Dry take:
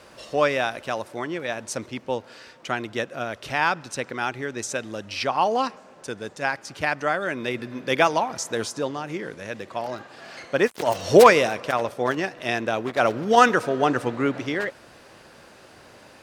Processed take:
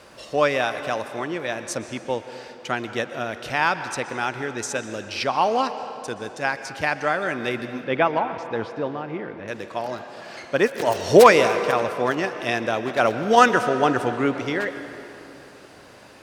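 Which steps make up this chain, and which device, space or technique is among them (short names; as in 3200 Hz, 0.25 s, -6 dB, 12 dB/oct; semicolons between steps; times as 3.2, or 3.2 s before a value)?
7.84–9.48 air absorption 390 m; filtered reverb send (on a send: HPF 270 Hz 6 dB/oct + LPF 8900 Hz 12 dB/oct + reverb RT60 3.0 s, pre-delay 0.116 s, DRR 10 dB); on the sum: gain +1 dB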